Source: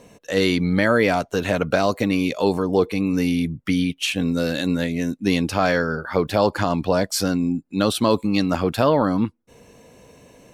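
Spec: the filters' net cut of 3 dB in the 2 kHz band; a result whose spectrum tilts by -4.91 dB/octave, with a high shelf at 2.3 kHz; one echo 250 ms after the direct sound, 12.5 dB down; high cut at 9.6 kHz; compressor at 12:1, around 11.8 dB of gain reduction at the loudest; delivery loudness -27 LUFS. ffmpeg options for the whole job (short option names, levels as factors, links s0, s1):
-af "lowpass=9600,equalizer=f=2000:t=o:g=-6.5,highshelf=f=2300:g=4.5,acompressor=threshold=0.0562:ratio=12,aecho=1:1:250:0.237,volume=1.41"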